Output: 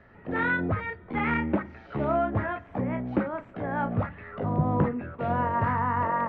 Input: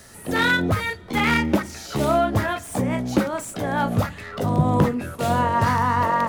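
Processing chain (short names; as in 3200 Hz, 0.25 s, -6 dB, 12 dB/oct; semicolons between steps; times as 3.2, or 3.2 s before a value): LPF 2200 Hz 24 dB/oct; gain -6 dB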